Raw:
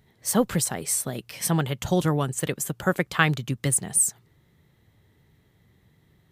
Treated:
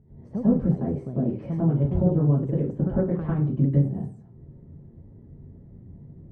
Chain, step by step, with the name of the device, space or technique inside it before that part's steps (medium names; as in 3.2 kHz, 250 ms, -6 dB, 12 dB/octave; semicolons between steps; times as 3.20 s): television next door (compression 4:1, threshold -33 dBFS, peak gain reduction 16 dB; low-pass 360 Hz 12 dB/octave; reverberation RT60 0.40 s, pre-delay 93 ms, DRR -9.5 dB); trim +6 dB